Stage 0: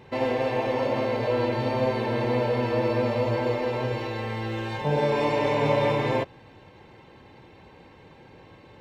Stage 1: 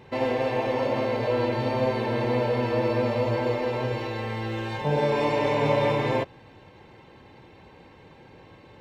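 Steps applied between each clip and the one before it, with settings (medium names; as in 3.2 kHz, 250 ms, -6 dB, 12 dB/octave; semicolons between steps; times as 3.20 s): no audible change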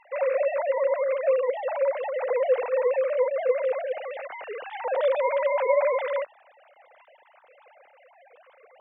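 formants replaced by sine waves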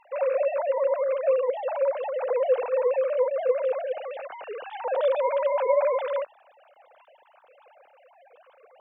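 peaking EQ 2 kHz -11 dB 0.28 oct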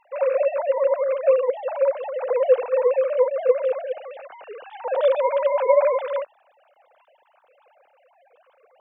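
upward expansion 1.5:1, over -36 dBFS; trim +6.5 dB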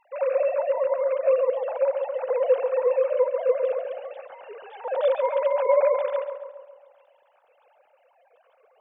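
filtered feedback delay 137 ms, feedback 57%, low-pass 2 kHz, level -7 dB; trim -3.5 dB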